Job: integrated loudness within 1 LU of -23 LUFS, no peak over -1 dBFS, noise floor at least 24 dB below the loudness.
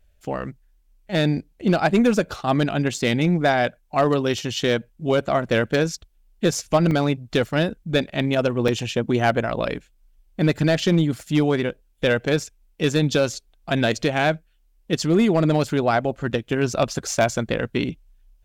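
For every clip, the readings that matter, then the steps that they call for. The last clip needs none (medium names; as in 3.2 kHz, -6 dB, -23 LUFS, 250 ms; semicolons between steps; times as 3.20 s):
clipped samples 0.7%; clipping level -10.0 dBFS; dropouts 2; longest dropout 3.1 ms; loudness -22.0 LUFS; peak level -10.0 dBFS; loudness target -23.0 LUFS
-> clip repair -10 dBFS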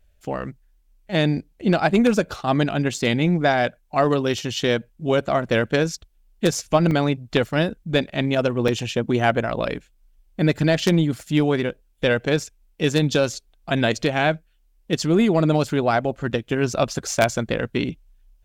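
clipped samples 0.0%; dropouts 2; longest dropout 3.1 ms
-> interpolate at 6.91/8.68 s, 3.1 ms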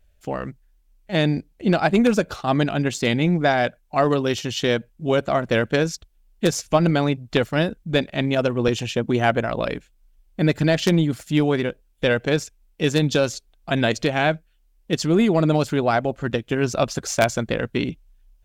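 dropouts 0; loudness -22.0 LUFS; peak level -1.0 dBFS; loudness target -23.0 LUFS
-> trim -1 dB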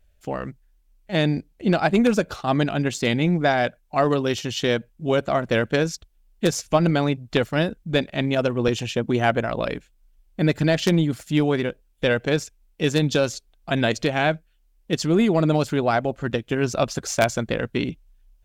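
loudness -23.0 LUFS; peak level -2.0 dBFS; noise floor -62 dBFS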